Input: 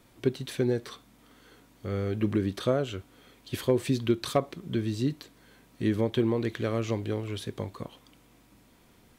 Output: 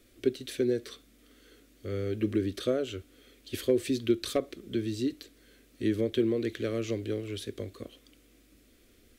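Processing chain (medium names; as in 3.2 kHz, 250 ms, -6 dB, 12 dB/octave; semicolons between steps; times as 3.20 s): bass shelf 130 Hz +3.5 dB; static phaser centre 370 Hz, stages 4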